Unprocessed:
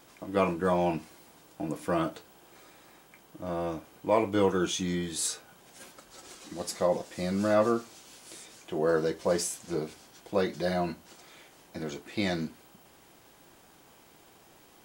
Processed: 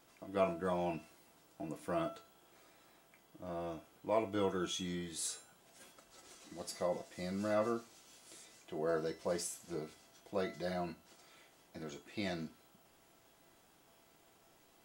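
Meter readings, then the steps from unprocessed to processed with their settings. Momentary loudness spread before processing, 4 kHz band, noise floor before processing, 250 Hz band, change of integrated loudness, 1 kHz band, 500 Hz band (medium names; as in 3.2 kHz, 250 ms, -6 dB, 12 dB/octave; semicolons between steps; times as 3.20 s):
20 LU, -8.0 dB, -58 dBFS, -10.0 dB, -9.5 dB, -9.0 dB, -9.0 dB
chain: feedback comb 670 Hz, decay 0.44 s, mix 80%; trim +3.5 dB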